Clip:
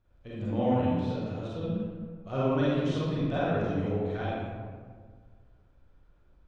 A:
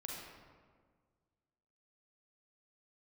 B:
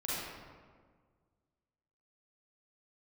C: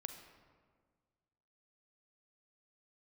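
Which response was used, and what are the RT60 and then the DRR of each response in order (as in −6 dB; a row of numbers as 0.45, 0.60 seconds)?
B; 1.7, 1.7, 1.7 seconds; −2.5, −9.0, 6.5 decibels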